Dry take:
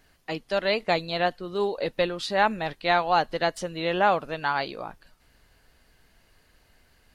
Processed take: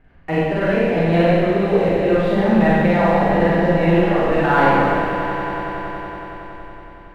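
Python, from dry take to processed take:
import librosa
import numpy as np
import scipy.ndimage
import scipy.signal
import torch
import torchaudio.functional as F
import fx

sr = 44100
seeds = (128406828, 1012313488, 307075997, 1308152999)

y = scipy.signal.sosfilt(scipy.signal.butter(4, 2400.0, 'lowpass', fs=sr, output='sos'), x)
y = fx.low_shelf(y, sr, hz=310.0, db=10.0)
y = fx.leveller(y, sr, passes=1)
y = fx.over_compress(y, sr, threshold_db=-21.0, ratio=-0.5)
y = fx.echo_swell(y, sr, ms=93, loudest=5, wet_db=-14.5)
y = fx.rev_schroeder(y, sr, rt60_s=1.7, comb_ms=32, drr_db=-7.5)
y = F.gain(torch.from_numpy(y), -1.0).numpy()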